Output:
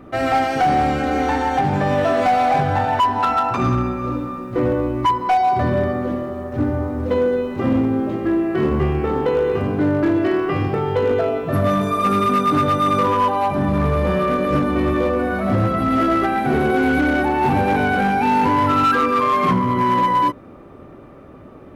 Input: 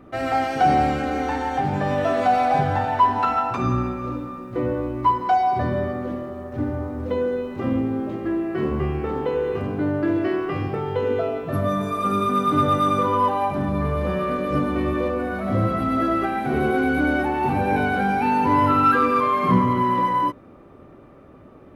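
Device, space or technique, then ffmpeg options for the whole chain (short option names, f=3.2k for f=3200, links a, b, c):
limiter into clipper: -af "alimiter=limit=-13dB:level=0:latency=1:release=488,asoftclip=type=hard:threshold=-17.5dB,volume=5.5dB"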